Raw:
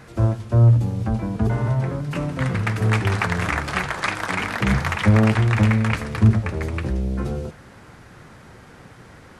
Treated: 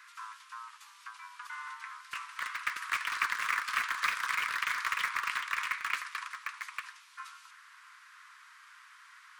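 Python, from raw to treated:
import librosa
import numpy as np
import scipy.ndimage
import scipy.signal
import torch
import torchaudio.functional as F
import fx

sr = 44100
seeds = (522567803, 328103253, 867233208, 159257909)

p1 = scipy.signal.sosfilt(scipy.signal.butter(16, 1000.0, 'highpass', fs=sr, output='sos'), x)
p2 = fx.high_shelf(p1, sr, hz=5900.0, db=-3.0)
p3 = (np.mod(10.0 ** (23.0 / 20.0) * p2 + 1.0, 2.0) - 1.0) / 10.0 ** (23.0 / 20.0)
p4 = p2 + (p3 * 10.0 ** (-12.0 / 20.0))
y = p4 * 10.0 ** (-6.0 / 20.0)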